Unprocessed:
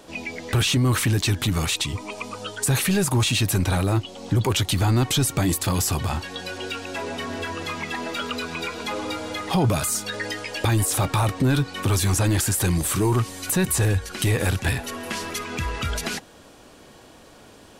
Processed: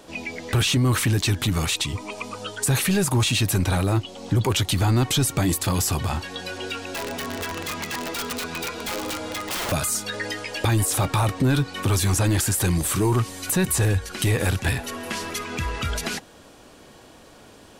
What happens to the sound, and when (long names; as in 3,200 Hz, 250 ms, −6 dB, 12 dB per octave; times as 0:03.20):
0:06.89–0:09.72: wrap-around overflow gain 22 dB